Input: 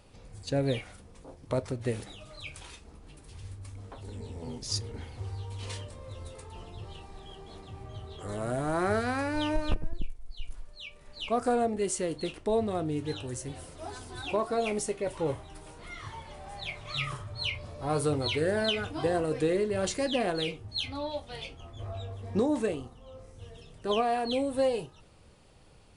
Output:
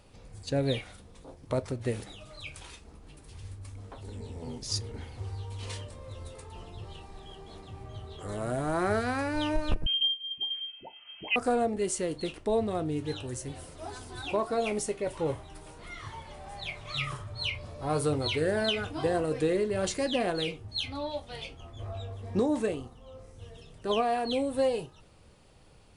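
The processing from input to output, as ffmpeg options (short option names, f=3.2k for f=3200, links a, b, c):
-filter_complex "[0:a]asettb=1/sr,asplit=3[a][b][c];[a]atrim=end=0.584[d];[b]atrim=start=0.58:end=1.32,asetpts=PTS-STARTPTS,afade=t=in:d=0.004:c=qsin,afade=t=out:st=0.736:d=0.004:c=qsin,equalizer=f=3.7k:t=o:w=0.34:g=6[e];[c]atrim=start=1.316[f];[d][e]acrossfade=d=0.004:c1=hsin:c2=qsin[g];[g][f]acrossfade=d=0.004:c1=qsin:c2=hsin,asettb=1/sr,asplit=3[h][i][j];[h]atrim=end=9.864[k];[i]atrim=start=9.86:end=11.36,asetpts=PTS-STARTPTS,afade=t=in:d=0.004:c=qsin,afade=t=out:st=1.496:d=0.004:c=qsin,lowpass=f=2.7k:t=q:w=0.5098,lowpass=f=2.7k:t=q:w=0.6013,lowpass=f=2.7k:t=q:w=0.9,lowpass=f=2.7k:t=q:w=2.563,afreqshift=-3200[l];[j]atrim=start=11.356[m];[k][l]acrossfade=d=0.004:c1=hsin:c2=qsin[n];[n][m]acrossfade=d=0.004:c1=qsin:c2=hsin"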